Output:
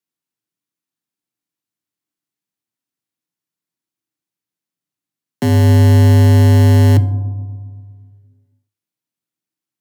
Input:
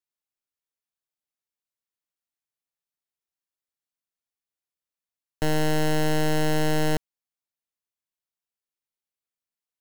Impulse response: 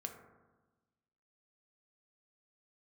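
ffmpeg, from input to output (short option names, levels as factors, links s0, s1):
-filter_complex "[0:a]lowshelf=f=290:t=q:w=1.5:g=7.5,afreqshift=100,asplit=2[s0][s1];[1:a]atrim=start_sample=2205,asetrate=30429,aresample=44100[s2];[s1][s2]afir=irnorm=-1:irlink=0,volume=1.06[s3];[s0][s3]amix=inputs=2:normalize=0,volume=0.891"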